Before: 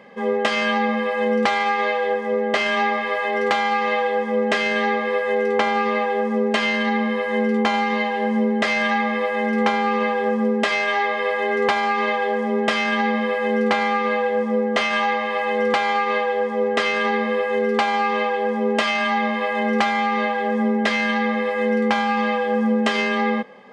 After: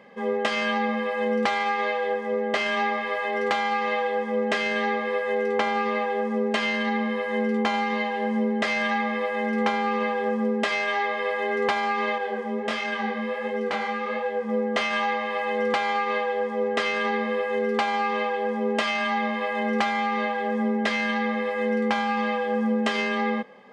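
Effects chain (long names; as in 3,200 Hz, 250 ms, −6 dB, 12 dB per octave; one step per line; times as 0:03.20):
0:12.18–0:14.49: chorus effect 1.4 Hz, delay 19.5 ms, depth 7 ms
level −4.5 dB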